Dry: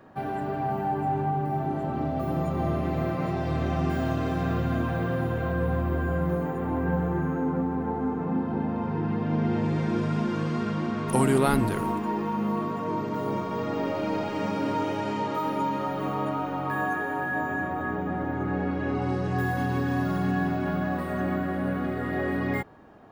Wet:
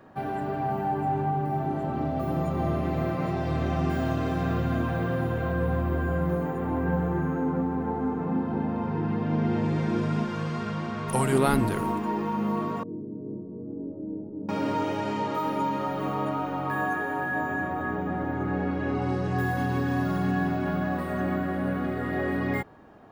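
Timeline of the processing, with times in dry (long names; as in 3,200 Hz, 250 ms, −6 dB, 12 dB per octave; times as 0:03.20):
0:10.24–0:11.33: parametric band 290 Hz −9 dB
0:12.83–0:14.49: transistor ladder low-pass 410 Hz, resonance 40%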